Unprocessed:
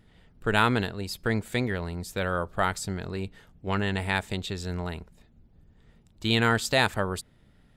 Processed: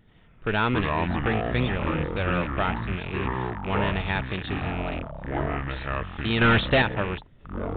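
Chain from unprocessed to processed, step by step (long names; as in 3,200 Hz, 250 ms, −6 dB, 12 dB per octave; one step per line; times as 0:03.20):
loose part that buzzes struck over −39 dBFS, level −25 dBFS
0:06.41–0:06.82: leveller curve on the samples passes 3
hard clipping −16 dBFS, distortion −11 dB
delay with pitch and tempo change per echo 82 ms, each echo −6 semitones, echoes 3
downsampling to 8,000 Hz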